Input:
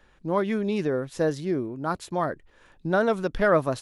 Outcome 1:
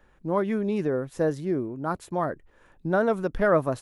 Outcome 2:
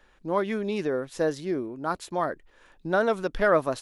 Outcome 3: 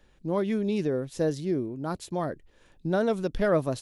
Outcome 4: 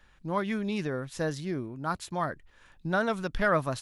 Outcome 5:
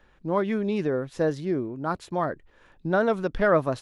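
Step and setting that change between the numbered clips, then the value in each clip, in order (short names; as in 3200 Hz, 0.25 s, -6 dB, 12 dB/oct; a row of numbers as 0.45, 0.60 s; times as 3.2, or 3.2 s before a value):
bell, frequency: 4200, 110, 1300, 420, 14000 Hz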